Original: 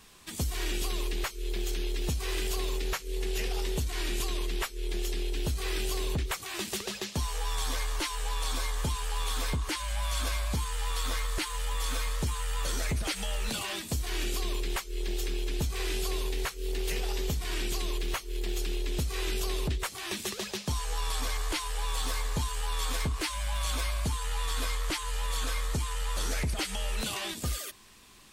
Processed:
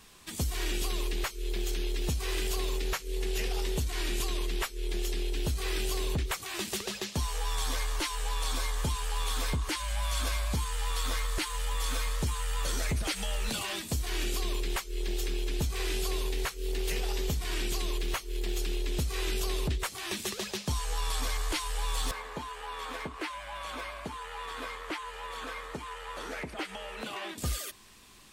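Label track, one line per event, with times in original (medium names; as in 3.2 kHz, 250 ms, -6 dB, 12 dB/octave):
22.110000	27.380000	three-band isolator lows -19 dB, under 210 Hz, highs -15 dB, over 2.8 kHz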